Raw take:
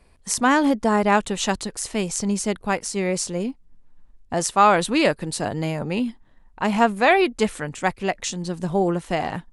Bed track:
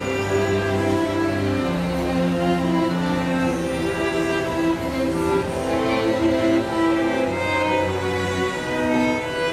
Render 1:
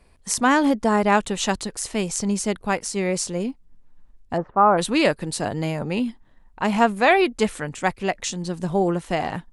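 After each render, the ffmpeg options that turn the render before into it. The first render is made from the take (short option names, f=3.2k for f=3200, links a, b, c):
-filter_complex "[0:a]asplit=3[a][b][c];[a]afade=t=out:st=4.36:d=0.02[d];[b]lowpass=f=1.3k:w=0.5412,lowpass=f=1.3k:w=1.3066,afade=t=in:st=4.36:d=0.02,afade=t=out:st=4.77:d=0.02[e];[c]afade=t=in:st=4.77:d=0.02[f];[d][e][f]amix=inputs=3:normalize=0"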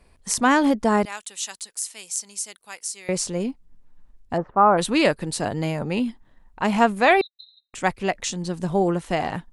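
-filter_complex "[0:a]asettb=1/sr,asplit=3[a][b][c];[a]atrim=end=1.054[d];[b]atrim=start=1.05:end=3.09,asetpts=PTS-STARTPTS,afade=t=in:d=0.004:c=qsin,afade=t=out:st=2.036:d=0.004:c=qsin,aderivative[e];[c]atrim=start=3.086[f];[d][e]acrossfade=d=0.004:c1=hsin:c2=qsin[g];[g][f]acrossfade=d=0.004:c1=qsin:c2=hsin,asettb=1/sr,asplit=3[h][i][j];[h]atrim=end=7.214[k];[i]atrim=start=7.21:end=7.74,asetpts=PTS-STARTPTS,afade=t=in:d=0.004:c=qsin,afade=t=out:st=0.526:d=0.004:c=qsin,asuperpass=centerf=3900:order=20:qfactor=7.9[l];[j]atrim=start=7.736[m];[k][l]acrossfade=d=0.004:c1=hsin:c2=qsin[n];[n][m]acrossfade=d=0.004:c1=qsin:c2=hsin"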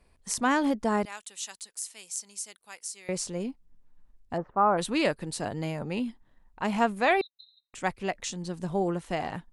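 -af "volume=-7dB"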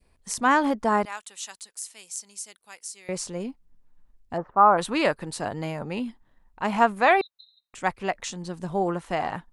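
-af "adynamicequalizer=threshold=0.0112:dfrequency=1100:dqfactor=0.77:tfrequency=1100:tqfactor=0.77:attack=5:release=100:ratio=0.375:range=4:mode=boostabove:tftype=bell"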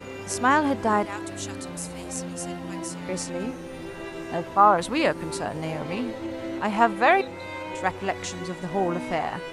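-filter_complex "[1:a]volume=-14dB[a];[0:a][a]amix=inputs=2:normalize=0"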